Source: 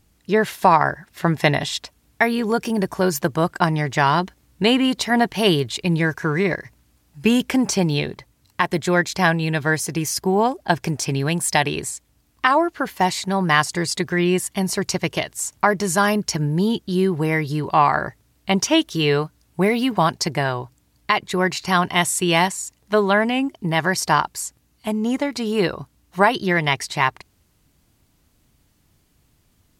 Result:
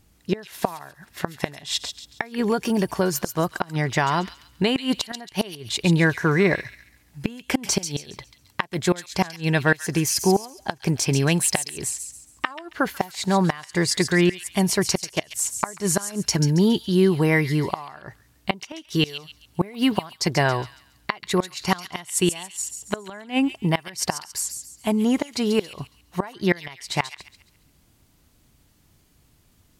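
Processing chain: 2.38–4.76 compressor 16:1, threshold -18 dBFS, peak gain reduction 8 dB; flipped gate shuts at -9 dBFS, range -24 dB; thin delay 0.138 s, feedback 34%, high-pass 2900 Hz, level -7 dB; gain +1.5 dB

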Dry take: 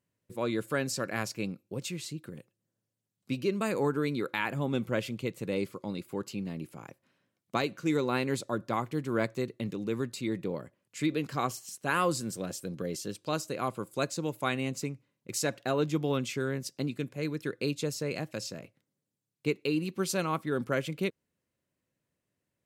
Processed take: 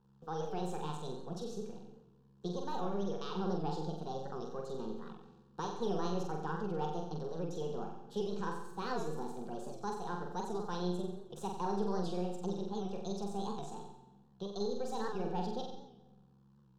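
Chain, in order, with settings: half-wave gain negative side -3 dB; dynamic EQ 1300 Hz, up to -7 dB, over -46 dBFS, Q 1.1; in parallel at -1 dB: limiter -26 dBFS, peak gain reduction 9.5 dB; on the sum: hum 50 Hz, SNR 31 dB; formant shift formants +2 st; bit-crush 10-bit; air absorption 250 m; fixed phaser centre 310 Hz, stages 8; flutter echo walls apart 10.4 m, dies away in 0.89 s; reverb RT60 1.4 s, pre-delay 0.152 s, DRR 13.5 dB; speed mistake 33 rpm record played at 45 rpm; record warp 78 rpm, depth 100 cents; gain -6.5 dB

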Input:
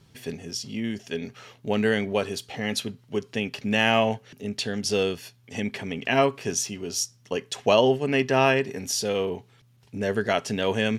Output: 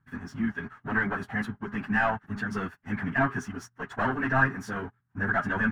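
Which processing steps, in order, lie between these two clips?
de-hum 205.4 Hz, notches 15; sample leveller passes 3; EQ curve 120 Hz 0 dB, 270 Hz -2 dB, 500 Hz -17 dB, 750 Hz -3 dB, 1600 Hz +9 dB, 2400 Hz -13 dB, 4700 Hz -23 dB, 7700 Hz -21 dB; plain phase-vocoder stretch 0.52×; gain -5.5 dB

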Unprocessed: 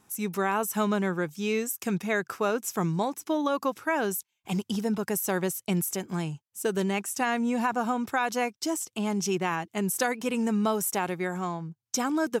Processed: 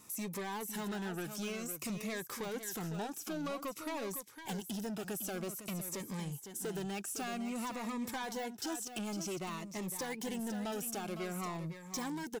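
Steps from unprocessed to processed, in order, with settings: de-esser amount 90%; high shelf 5000 Hz +5.5 dB; compressor 4:1, threshold -33 dBFS, peak gain reduction 10 dB; soft clip -37.5 dBFS, distortion -9 dB; low shelf 280 Hz -5.5 dB; echo 0.508 s -9 dB; cascading phaser falling 0.52 Hz; gain +4.5 dB

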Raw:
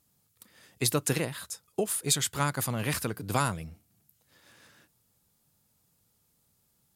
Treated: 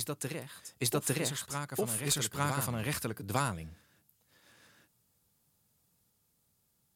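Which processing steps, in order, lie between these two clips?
added harmonics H 2 -17 dB, 3 -16 dB, 5 -21 dB, 8 -43 dB, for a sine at -10.5 dBFS; reverse echo 0.854 s -5.5 dB; gain -3.5 dB

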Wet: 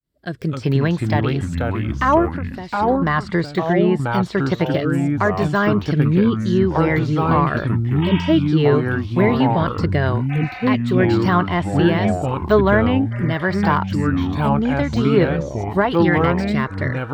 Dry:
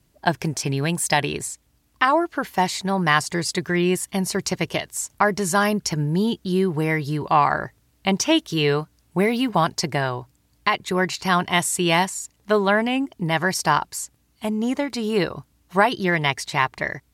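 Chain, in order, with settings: opening faded in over 0.64 s; rotary speaker horn 0.85 Hz; treble ducked by the level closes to 2800 Hz, closed at -18.5 dBFS; de-esser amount 95%; thirty-one-band EQ 800 Hz -6 dB, 2500 Hz -7 dB, 6300 Hz -12 dB, 10000 Hz -9 dB; 2.32–3.02 compressor 3:1, threshold -38 dBFS, peak gain reduction 12 dB; 8.05–8.27 spectral repair 680–3800 Hz after; echoes that change speed 0.191 s, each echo -4 st, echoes 3; gain +6 dB

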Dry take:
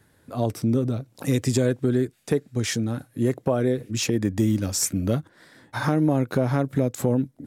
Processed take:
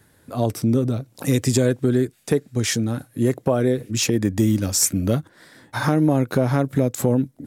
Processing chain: high shelf 6400 Hz +4.5 dB; gain +3 dB

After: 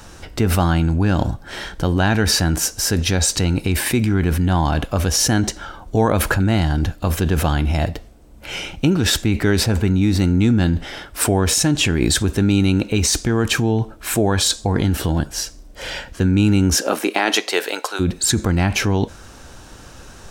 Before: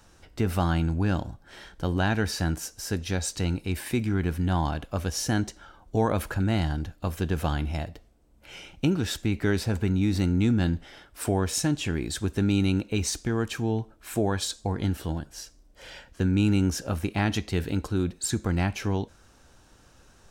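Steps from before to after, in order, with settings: 16.76–17.99 HPF 250 Hz -> 620 Hz 24 dB/oct; in parallel at -1.5 dB: negative-ratio compressor -32 dBFS, ratio -0.5; on the sum: gain +7 dB

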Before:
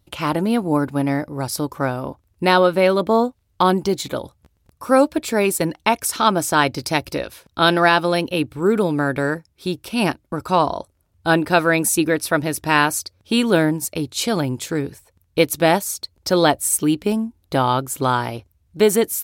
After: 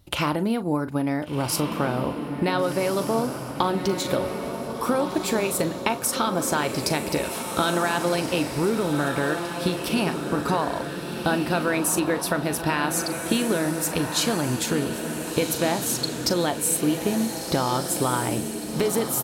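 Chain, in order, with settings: limiter -7 dBFS, peak gain reduction 5.5 dB; compressor 6:1, threshold -27 dBFS, peak gain reduction 14 dB; doubler 40 ms -13 dB; on a send: diffused feedback echo 1.489 s, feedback 52%, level -6 dB; on the sum: gain +5.5 dB

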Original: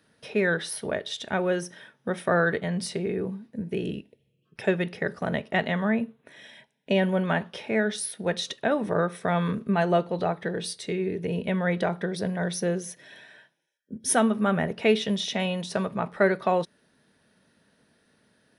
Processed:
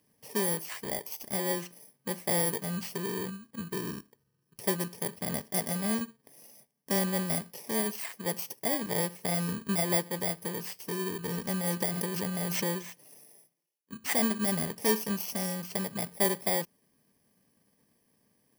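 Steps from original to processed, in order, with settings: FFT order left unsorted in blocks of 32 samples; 11.81–12.85 backwards sustainer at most 22 dB/s; gain -5.5 dB

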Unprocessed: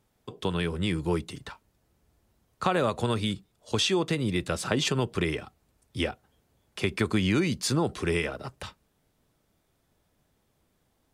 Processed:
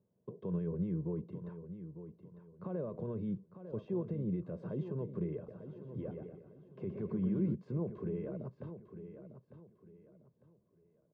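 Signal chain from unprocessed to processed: comb 1.9 ms, depth 64%; limiter -24 dBFS, peak gain reduction 12.5 dB; ladder band-pass 230 Hz, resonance 40%; feedback echo 0.901 s, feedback 31%, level -11 dB; 5.36–7.55 warbling echo 0.121 s, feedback 46%, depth 58 cents, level -6 dB; gain +9 dB

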